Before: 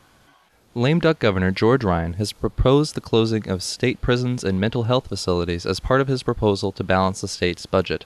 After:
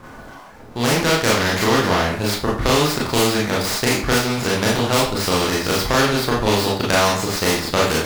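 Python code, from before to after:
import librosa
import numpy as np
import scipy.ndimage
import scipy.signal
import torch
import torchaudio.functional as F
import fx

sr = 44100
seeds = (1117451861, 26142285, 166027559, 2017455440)

p1 = scipy.signal.medfilt(x, 15)
p2 = fx.rider(p1, sr, range_db=10, speed_s=2.0)
p3 = p1 + (p2 * 10.0 ** (-3.0 / 20.0))
p4 = fx.rev_schroeder(p3, sr, rt60_s=0.31, comb_ms=26, drr_db=-6.0)
p5 = fx.spectral_comp(p4, sr, ratio=2.0)
y = p5 * 10.0 ** (-8.0 / 20.0)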